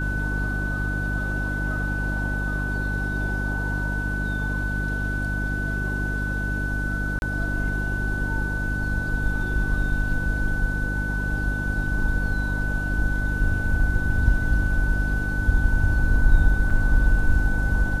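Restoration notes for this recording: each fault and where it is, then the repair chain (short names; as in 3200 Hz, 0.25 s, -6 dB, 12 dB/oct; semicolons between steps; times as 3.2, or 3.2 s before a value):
hum 50 Hz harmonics 6 -27 dBFS
tone 1500 Hz -28 dBFS
7.19–7.22 gap 31 ms
16.7–16.71 gap 5.3 ms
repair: notch 1500 Hz, Q 30; de-hum 50 Hz, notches 6; interpolate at 7.19, 31 ms; interpolate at 16.7, 5.3 ms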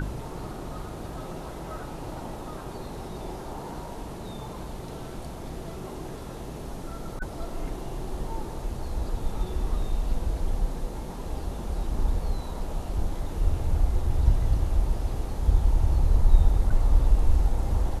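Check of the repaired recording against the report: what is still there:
none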